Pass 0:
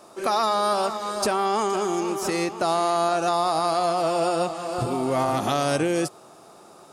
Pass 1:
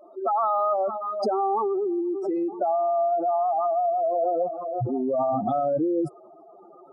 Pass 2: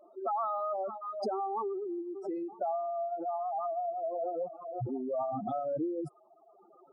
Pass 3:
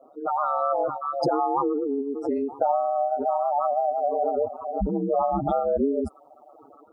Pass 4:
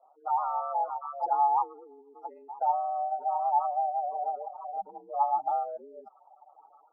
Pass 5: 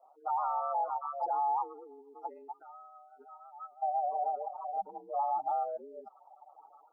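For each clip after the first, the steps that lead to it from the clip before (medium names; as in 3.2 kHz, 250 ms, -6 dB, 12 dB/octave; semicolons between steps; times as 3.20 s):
spectral contrast enhancement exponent 3.6
reverb removal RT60 1.1 s; trim -8 dB
level rider gain up to 5 dB; ring modulator 72 Hz; trim +8 dB
ladder band-pass 900 Hz, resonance 80%
time-frequency box 2.52–3.83 s, 450–1200 Hz -27 dB; peak limiter -24.5 dBFS, peak gain reduction 9 dB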